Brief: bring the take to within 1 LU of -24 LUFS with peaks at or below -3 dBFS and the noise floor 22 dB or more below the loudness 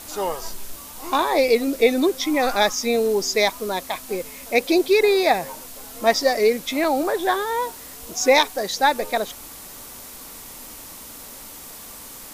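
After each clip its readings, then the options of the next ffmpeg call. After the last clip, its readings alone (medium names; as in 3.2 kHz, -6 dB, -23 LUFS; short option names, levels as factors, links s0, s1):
noise floor -40 dBFS; noise floor target -43 dBFS; loudness -20.5 LUFS; peak level -3.5 dBFS; loudness target -24.0 LUFS
-> -af "afftdn=nr=6:nf=-40"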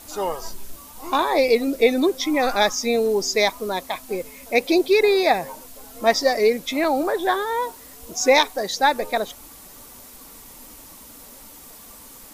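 noise floor -44 dBFS; loudness -21.0 LUFS; peak level -3.5 dBFS; loudness target -24.0 LUFS
-> -af "volume=0.708"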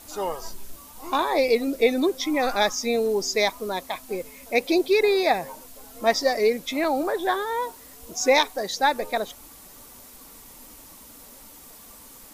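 loudness -24.0 LUFS; peak level -6.5 dBFS; noise floor -47 dBFS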